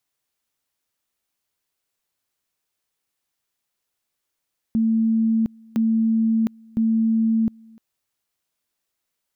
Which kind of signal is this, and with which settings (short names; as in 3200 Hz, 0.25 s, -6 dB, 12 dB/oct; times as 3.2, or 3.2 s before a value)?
two-level tone 224 Hz -16 dBFS, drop 28 dB, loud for 0.71 s, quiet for 0.30 s, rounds 3